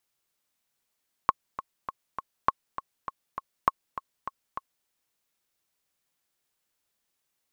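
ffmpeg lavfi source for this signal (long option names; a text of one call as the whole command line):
ffmpeg -f lavfi -i "aevalsrc='pow(10,(-6.5-13*gte(mod(t,4*60/201),60/201))/20)*sin(2*PI*1090*mod(t,60/201))*exp(-6.91*mod(t,60/201)/0.03)':duration=3.58:sample_rate=44100" out.wav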